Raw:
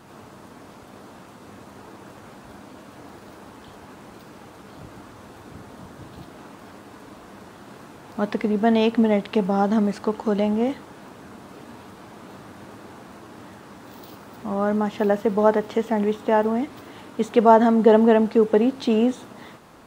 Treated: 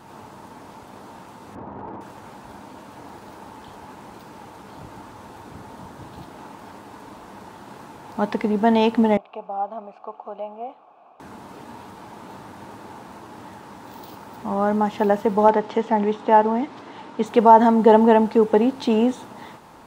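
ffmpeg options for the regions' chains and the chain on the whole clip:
-filter_complex "[0:a]asettb=1/sr,asplit=3[a][b][c];[a]atrim=end=1.554[d];[b]atrim=start=1.55:end=2.01,asetpts=PTS-STARTPTS,afade=t=in:d=0.004:c=qsin,afade=t=out:st=0.456:d=0.004:c=qsin,lowpass=1.1k,acontrast=62,volume=31dB,asoftclip=hard,volume=-31dB[e];[c]atrim=start=2.006[f];[d][e]acrossfade=d=0.004:c1=hsin:c2=qsin[g];[g][f]acrossfade=d=0.004:c1=qsin:c2=hsin,asettb=1/sr,asplit=3[h][i][j];[h]atrim=end=9.174[k];[i]atrim=start=9.17:end=11.2,asetpts=PTS-STARTPTS,afade=t=in:d=0.004:c=qsin,afade=t=out:st=2.026:d=0.004:c=qsin,asplit=3[l][m][n];[l]bandpass=f=730:t=q:w=8,volume=0dB[o];[m]bandpass=f=1.09k:t=q:w=8,volume=-6dB[p];[n]bandpass=f=2.44k:t=q:w=8,volume=-9dB[q];[o][p][q]amix=inputs=3:normalize=0,highshelf=f=4.2k:g=-5.5[r];[j]atrim=start=11.196[s];[k][r]acrossfade=d=0.004:c1=hsin:c2=qsin[t];[t][s]acrossfade=d=0.004:c1=qsin:c2=hsin,asettb=1/sr,asplit=3[u][v][w];[u]atrim=end=15.484[x];[v]atrim=start=15.48:end=17.26,asetpts=PTS-STARTPTS,afade=t=in:d=0.004:c=qsin,afade=t=out:st=1.776:d=0.004:c=qsin,highpass=130,lowpass=5.8k,volume=7dB,asoftclip=hard,volume=-7dB[y];[w]atrim=start=17.256[z];[x][y]acrossfade=d=0.004:c1=hsin:c2=qsin[aa];[aa][z]acrossfade=d=0.004:c1=qsin:c2=hsin,equalizer=f=890:w=5:g=9,alimiter=level_in=1.5dB:limit=-1dB:release=50:level=0:latency=1,volume=-1dB"

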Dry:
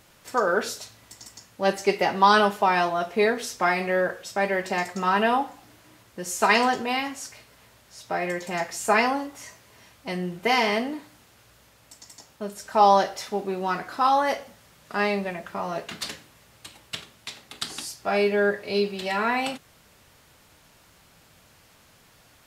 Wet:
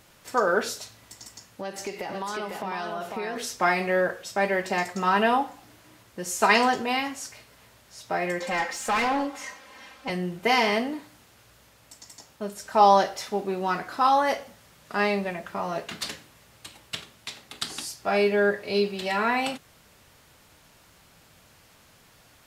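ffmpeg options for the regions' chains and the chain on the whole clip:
-filter_complex "[0:a]asettb=1/sr,asplit=3[a][b][c];[a]atrim=end=1.264[d];[b]atrim=start=1.26:end=3.36,asetpts=PTS-STARTPTS,afade=t=in:d=0.004:c=qsin,afade=t=out:st=2.096:d=0.004:c=qsin,acompressor=threshold=-30dB:ratio=6:attack=3.2:release=140:knee=1:detection=peak,aecho=1:1:499:0.631,atrim=end_sample=92610[e];[c]atrim=start=3.356[f];[d][e]acrossfade=d=0.004:c1=hsin:c2=qsin[g];[g][f]acrossfade=d=0.004:c1=qsin:c2=hsin,asettb=1/sr,asplit=3[h][i][j];[h]atrim=end=8.404[k];[i]atrim=start=8.4:end=10.1,asetpts=PTS-STARTPTS,afade=t=in:d=0.004:c=qsin,afade=t=out:st=1.696:d=0.004:c=qsin,aecho=1:1:3.8:0.93,atrim=end_sample=74970,asoftclip=type=hard:threshold=-22dB,asplit=2[l][m];[m]highpass=f=720:p=1,volume=12dB,asoftclip=type=tanh:threshold=-18.5dB[n];[l][n]amix=inputs=2:normalize=0,lowpass=f=2.3k:p=1,volume=-6dB[o];[j]atrim=start=10.096[p];[k][o]acrossfade=d=0.004:c1=hsin:c2=qsin[q];[q][p]acrossfade=d=0.004:c1=qsin:c2=hsin"

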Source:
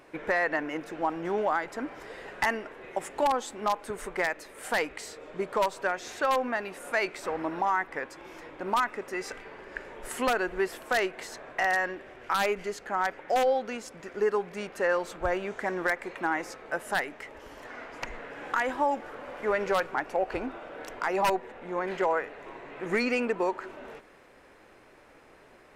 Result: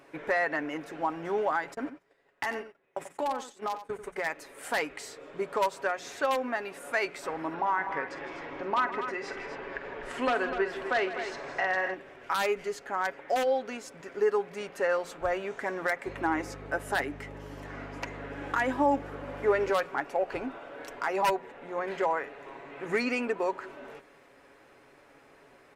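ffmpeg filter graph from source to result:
-filter_complex "[0:a]asettb=1/sr,asplit=3[a][b][c];[a]atrim=end=1.744[d];[b]atrim=start=1.74:end=4.26,asetpts=PTS-STARTPTS,afade=t=in:d=0.004:c=qsin,afade=t=out:st=2.516:d=0.004:c=qsin,agate=range=-26dB:threshold=-39dB:ratio=16:release=100:detection=peak,acompressor=threshold=-27dB:ratio=3:attack=3.2:release=140:knee=1:detection=peak,aecho=1:1:90:0.266,atrim=end_sample=111132[e];[c]atrim=start=4.256[f];[d][e]acrossfade=d=0.004:c1=hsin:c2=qsin[g];[g][f]acrossfade=d=0.004:c1=qsin:c2=hsin,asettb=1/sr,asplit=3[h][i][j];[h]atrim=end=7.544[k];[i]atrim=start=7.54:end=11.94,asetpts=PTS-STARTPTS,afade=t=in:d=0.004:c=qsin,afade=t=out:st=4.396:d=0.004:c=qsin,lowpass=3.7k,acompressor=mode=upward:threshold=-30dB:ratio=2.5:attack=3.2:release=140:knee=2.83:detection=peak,aecho=1:1:48|158|249:0.251|0.224|0.335,atrim=end_sample=194040[l];[j]atrim=start=11.936[m];[k][l]acrossfade=d=0.004:c1=hsin:c2=qsin[n];[n][m]acrossfade=d=0.004:c1=qsin:c2=hsin,asettb=1/sr,asplit=3[o][p][q];[o]atrim=end=16.064[r];[p]atrim=start=16.06:end=19.7,asetpts=PTS-STARTPTS,afade=t=in:d=0.004:c=qsin,afade=t=out:st=3.636:d=0.004:c=qsin,highpass=f=280:t=q:w=2.2,aeval=exprs='val(0)+0.01*(sin(2*PI*50*n/s)+sin(2*PI*2*50*n/s)/2+sin(2*PI*3*50*n/s)/3+sin(2*PI*4*50*n/s)/4+sin(2*PI*5*50*n/s)/5)':c=same[s];[q]atrim=start=19.696[t];[r][s]acrossfade=d=0.004:c1=hsin:c2=qsin[u];[u][t]acrossfade=d=0.004:c1=qsin:c2=hsin,highpass=f=49:p=1,bandreject=f=60:t=h:w=6,bandreject=f=120:t=h:w=6,bandreject=f=180:t=h:w=6,aecho=1:1:7.2:0.39,volume=-2dB"

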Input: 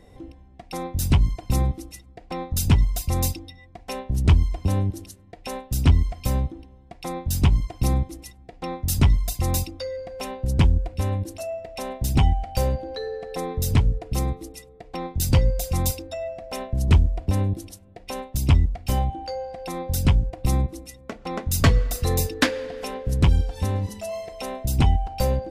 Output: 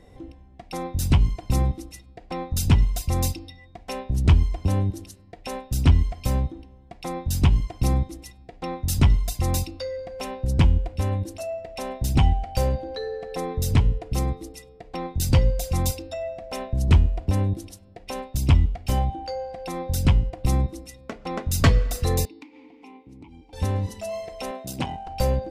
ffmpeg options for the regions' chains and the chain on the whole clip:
-filter_complex "[0:a]asettb=1/sr,asplit=3[a][b][c];[a]atrim=end=22.254[d];[b]atrim=start=22.25:end=23.53,asetpts=PTS-STARTPTS,afade=t=in:d=0.004:c=qsin,afade=t=out:st=1.276:d=0.004:c=qsin,asplit=3[e][f][g];[e]bandpass=f=300:t=q:w=8,volume=0dB[h];[f]bandpass=f=870:t=q:w=8,volume=-6dB[i];[g]bandpass=f=2.24k:t=q:w=8,volume=-9dB[j];[h][i][j]amix=inputs=3:normalize=0,highshelf=f=4.7k:g=9,acompressor=threshold=-40dB:ratio=12:attack=3.2:release=140:knee=1:detection=peak[k];[c]atrim=start=23.526[l];[d][k]acrossfade=d=0.004:c1=hsin:c2=qsin[m];[m][l]acrossfade=d=0.004:c1=qsin:c2=hsin,asettb=1/sr,asplit=3[n][o][p];[n]atrim=end=24.514[q];[o]atrim=start=24.51:end=25.07,asetpts=PTS-STARTPTS,afade=t=in:d=0.004:c=qsin,afade=t=out:st=0.556:d=0.004:c=qsin,aeval=exprs='(tanh(4.47*val(0)+0.45)-tanh(0.45))/4.47':c=same,highpass=200[r];[p]atrim=start=25.066[s];[q][r]acrossfade=d=0.004:c1=hsin:c2=qsin[t];[t][s]acrossfade=d=0.004:c1=qsin:c2=hsin,highshelf=f=12k:g=-7,bandreject=f=205.7:t=h:w=4,bandreject=f=411.4:t=h:w=4,bandreject=f=617.1:t=h:w=4,bandreject=f=822.8:t=h:w=4,bandreject=f=1.0285k:t=h:w=4,bandreject=f=1.2342k:t=h:w=4,bandreject=f=1.4399k:t=h:w=4,bandreject=f=1.6456k:t=h:w=4,bandreject=f=1.8513k:t=h:w=4,bandreject=f=2.057k:t=h:w=4,bandreject=f=2.2627k:t=h:w=4,bandreject=f=2.4684k:t=h:w=4,bandreject=f=2.6741k:t=h:w=4,bandreject=f=2.8798k:t=h:w=4,bandreject=f=3.0855k:t=h:w=4,bandreject=f=3.2912k:t=h:w=4,bandreject=f=3.4969k:t=h:w=4,bandreject=f=3.7026k:t=h:w=4,bandreject=f=3.9083k:t=h:w=4,bandreject=f=4.114k:t=h:w=4,bandreject=f=4.3197k:t=h:w=4,bandreject=f=4.5254k:t=h:w=4,bandreject=f=4.7311k:t=h:w=4,bandreject=f=4.9368k:t=h:w=4,bandreject=f=5.1425k:t=h:w=4,bandreject=f=5.3482k:t=h:w=4"

